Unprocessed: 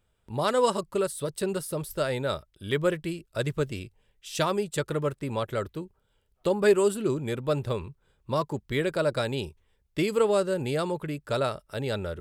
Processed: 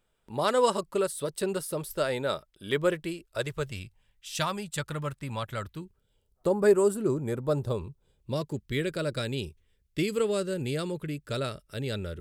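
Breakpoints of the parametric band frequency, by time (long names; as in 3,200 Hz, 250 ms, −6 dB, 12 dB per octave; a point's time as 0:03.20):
parametric band −12.5 dB 1.2 octaves
0:02.96 80 Hz
0:03.84 400 Hz
0:05.69 400 Hz
0:06.47 3,100 Hz
0:07.34 3,100 Hz
0:08.60 850 Hz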